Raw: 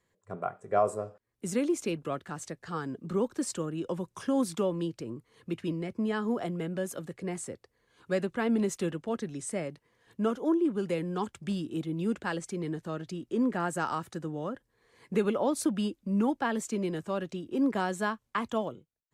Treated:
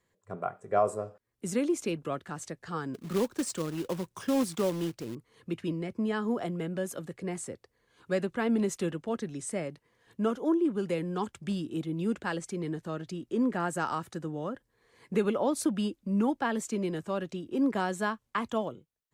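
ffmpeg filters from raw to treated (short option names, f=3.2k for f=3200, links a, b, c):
-filter_complex "[0:a]asettb=1/sr,asplit=3[a][b][c];[a]atrim=end=2.944[d];[b]atrim=start=2.94:end=5.15,asetpts=PTS-STARTPTS,afade=t=in:d=0.004:c=qsin,afade=t=out:st=2.206:d=0.004:c=qsin,acrusher=bits=3:mode=log:mix=0:aa=0.000001[e];[c]atrim=start=5.146[f];[d][e]acrossfade=d=0.004:c1=hsin:c2=qsin[g];[g][f]acrossfade=d=0.004:c1=qsin:c2=hsin"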